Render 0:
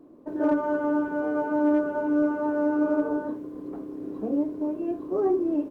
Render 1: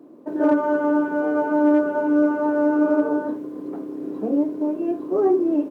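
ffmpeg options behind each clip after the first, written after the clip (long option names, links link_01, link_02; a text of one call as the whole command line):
ffmpeg -i in.wav -af "highpass=170,bandreject=frequency=1100:width=22,volume=5.5dB" out.wav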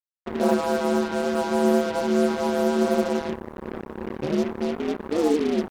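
ffmpeg -i in.wav -af "aeval=exprs='val(0)*sin(2*PI*77*n/s)':channel_layout=same,acrusher=bits=4:mix=0:aa=0.5" out.wav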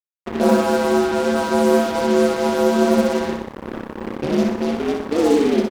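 ffmpeg -i in.wav -af "aecho=1:1:62|124|186|248|310|372|434:0.562|0.298|0.158|0.0837|0.0444|0.0235|0.0125,aeval=exprs='sgn(val(0))*max(abs(val(0))-0.00944,0)':channel_layout=same,volume=5dB" out.wav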